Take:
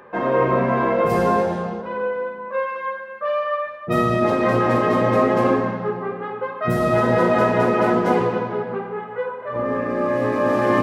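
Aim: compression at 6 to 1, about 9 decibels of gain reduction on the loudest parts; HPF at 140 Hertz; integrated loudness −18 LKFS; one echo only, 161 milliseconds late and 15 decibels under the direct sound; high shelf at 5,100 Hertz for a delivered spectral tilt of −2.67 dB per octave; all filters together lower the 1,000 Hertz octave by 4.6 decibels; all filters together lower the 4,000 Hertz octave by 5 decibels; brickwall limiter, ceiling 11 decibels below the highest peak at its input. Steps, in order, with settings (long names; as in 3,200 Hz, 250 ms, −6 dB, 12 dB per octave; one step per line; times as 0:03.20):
high-pass filter 140 Hz
parametric band 1,000 Hz −5.5 dB
parametric band 4,000 Hz −8.5 dB
high-shelf EQ 5,100 Hz +4.5 dB
downward compressor 6 to 1, threshold −25 dBFS
brickwall limiter −27 dBFS
single-tap delay 161 ms −15 dB
level +17 dB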